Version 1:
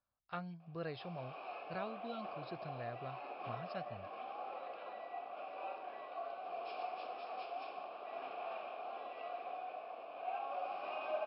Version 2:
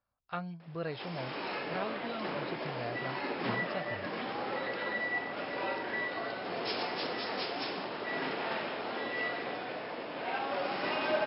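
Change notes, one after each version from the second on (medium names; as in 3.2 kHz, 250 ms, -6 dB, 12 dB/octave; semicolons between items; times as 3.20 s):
speech +5.5 dB; background: remove vowel filter a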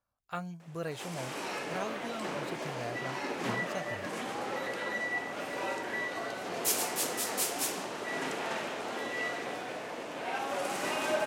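master: remove brick-wall FIR low-pass 5.4 kHz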